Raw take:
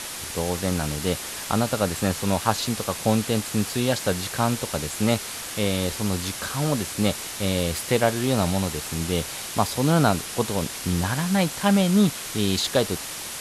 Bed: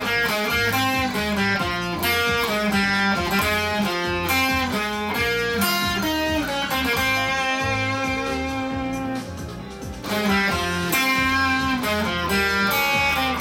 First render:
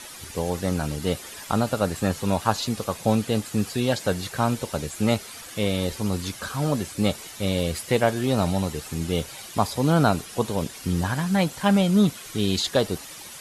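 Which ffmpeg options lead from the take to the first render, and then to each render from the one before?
-af "afftdn=nr=10:nf=-34"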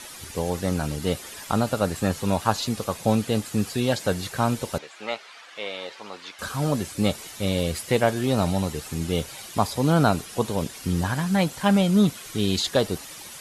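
-filter_complex "[0:a]asettb=1/sr,asplit=3[a][b][c];[a]atrim=end=4.784[d];[b]atrim=start=4.78:end=6.39,asetpts=PTS-STARTPTS,afade=t=in:d=0.004:c=qsin,afade=t=out:st=1.606:d=0.004:c=qsin,highpass=730,lowpass=3.3k[e];[c]atrim=start=6.386[f];[d][e]acrossfade=d=0.004:c1=hsin:c2=qsin[g];[g][f]acrossfade=d=0.004:c1=qsin:c2=hsin"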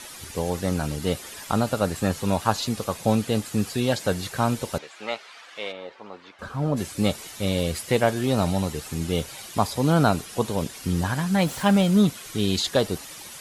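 -filter_complex "[0:a]asplit=3[a][b][c];[a]afade=t=out:st=5.71:d=0.02[d];[b]lowpass=f=1k:p=1,afade=t=in:st=5.71:d=0.02,afade=t=out:st=6.76:d=0.02[e];[c]afade=t=in:st=6.76:d=0.02[f];[d][e][f]amix=inputs=3:normalize=0,asettb=1/sr,asplit=3[g][h][i];[g]atrim=end=11.424[j];[h]atrim=start=11.42:end=12.02,asetpts=PTS-STARTPTS,afade=t=in:d=0.004:c=qsin,afade=t=out:st=0.596:d=0.004:c=qsin,aeval=exprs='val(0)+0.5*0.0168*sgn(val(0))':c=same[k];[i]atrim=start=12.016[l];[j][k]acrossfade=d=0.004:c1=hsin:c2=qsin[m];[m][l]acrossfade=d=0.004:c1=qsin:c2=hsin"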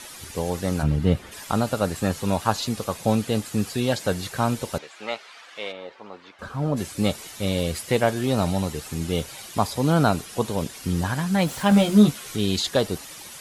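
-filter_complex "[0:a]asplit=3[a][b][c];[a]afade=t=out:st=0.82:d=0.02[d];[b]bass=f=250:g=10,treble=f=4k:g=-13,afade=t=in:st=0.82:d=0.02,afade=t=out:st=1.31:d=0.02[e];[c]afade=t=in:st=1.31:d=0.02[f];[d][e][f]amix=inputs=3:normalize=0,asettb=1/sr,asplit=3[g][h][i];[g]atrim=end=11.704[j];[h]atrim=start=11.7:end=12.36,asetpts=PTS-STARTPTS,afade=t=in:d=0.004:c=qsin,afade=t=out:st=0.656:d=0.004:c=qsin,asplit=2[k][l];[l]adelay=14,volume=-2dB[m];[k][m]amix=inputs=2:normalize=0,atrim=end_sample=29106[n];[i]atrim=start=12.356[o];[j][n]acrossfade=d=0.004:c1=hsin:c2=qsin[p];[p][o]acrossfade=d=0.004:c1=qsin:c2=hsin"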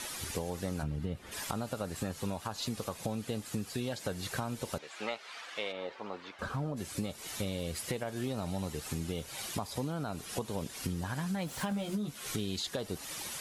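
-af "alimiter=limit=-14.5dB:level=0:latency=1:release=256,acompressor=threshold=-33dB:ratio=6"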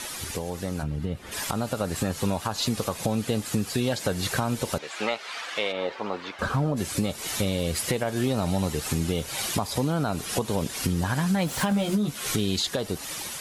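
-filter_complex "[0:a]asplit=2[a][b];[b]alimiter=level_in=3dB:limit=-24dB:level=0:latency=1:release=120,volume=-3dB,volume=-1.5dB[c];[a][c]amix=inputs=2:normalize=0,dynaudnorm=f=970:g=3:m=5.5dB"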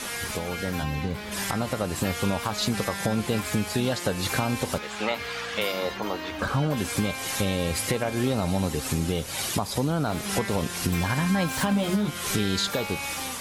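-filter_complex "[1:a]volume=-14dB[a];[0:a][a]amix=inputs=2:normalize=0"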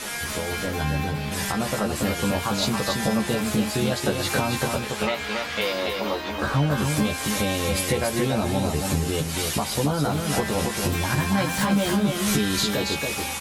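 -filter_complex "[0:a]asplit=2[a][b];[b]adelay=14,volume=-3.5dB[c];[a][c]amix=inputs=2:normalize=0,aecho=1:1:280:0.596"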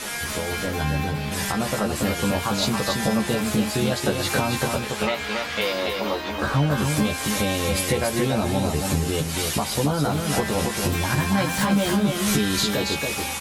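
-af "volume=1dB"

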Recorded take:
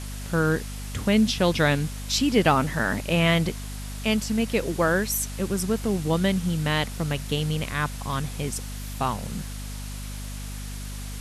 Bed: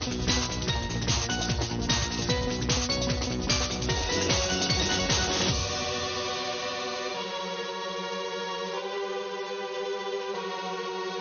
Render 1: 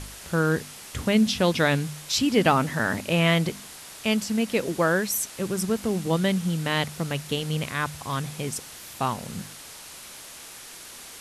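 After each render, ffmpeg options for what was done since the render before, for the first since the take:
-af "bandreject=f=50:t=h:w=4,bandreject=f=100:t=h:w=4,bandreject=f=150:t=h:w=4,bandreject=f=200:t=h:w=4,bandreject=f=250:t=h:w=4"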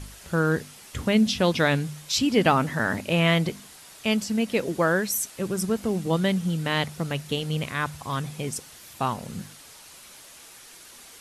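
-af "afftdn=nr=6:nf=-43"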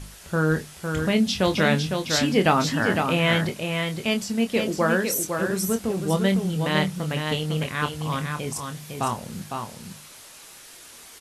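-filter_complex "[0:a]asplit=2[a][b];[b]adelay=26,volume=-8dB[c];[a][c]amix=inputs=2:normalize=0,asplit=2[d][e];[e]aecho=0:1:506:0.531[f];[d][f]amix=inputs=2:normalize=0"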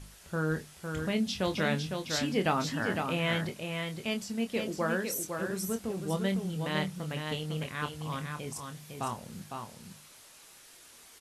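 -af "volume=-9dB"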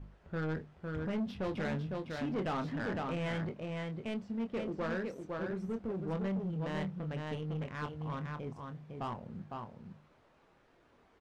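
-af "asoftclip=type=tanh:threshold=-30dB,adynamicsmooth=sensitivity=3:basefreq=1.1k"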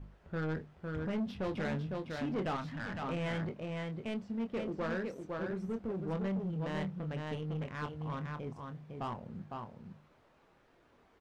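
-filter_complex "[0:a]asettb=1/sr,asplit=3[a][b][c];[a]atrim=end=2.564[d];[b]atrim=start=2.56:end=3.02,asetpts=PTS-STARTPTS,afade=t=in:d=0.004:c=qsin,afade=t=out:st=0.456:d=0.004:c=qsin,equalizer=f=400:t=o:w=1.2:g=-13.5[e];[c]atrim=start=3.016[f];[d][e]acrossfade=d=0.004:c1=hsin:c2=qsin[g];[g][f]acrossfade=d=0.004:c1=qsin:c2=hsin"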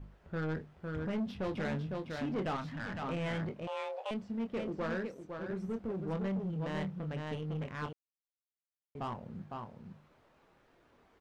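-filter_complex "[0:a]asettb=1/sr,asplit=3[a][b][c];[a]atrim=end=3.674[d];[b]atrim=start=3.67:end=4.11,asetpts=PTS-STARTPTS,afade=t=in:d=0.004:c=qsin,afade=t=out:st=0.436:d=0.004:c=qsin,afreqshift=370[e];[c]atrim=start=4.106[f];[d][e]acrossfade=d=0.004:c1=hsin:c2=qsin[g];[g][f]acrossfade=d=0.004:c1=qsin:c2=hsin,asplit=5[h][i][j][k][l];[h]atrim=end=5.072[m];[i]atrim=start=5.068:end=5.492,asetpts=PTS-STARTPTS,volume=-3.5dB[n];[j]atrim=start=5.488:end=7.93,asetpts=PTS-STARTPTS,afade=t=out:st=2.438:d=0.004:c=hsin[o];[k]atrim=start=7.93:end=8.95,asetpts=PTS-STARTPTS,volume=0[p];[l]atrim=start=8.95,asetpts=PTS-STARTPTS,afade=t=in:d=0.004:c=hsin[q];[m][n]acrossfade=d=0.004:c1=hsin:c2=hsin[r];[o][p][q]concat=n=3:v=0:a=1[s];[r][s]acrossfade=d=0.004:c1=hsin:c2=hsin"

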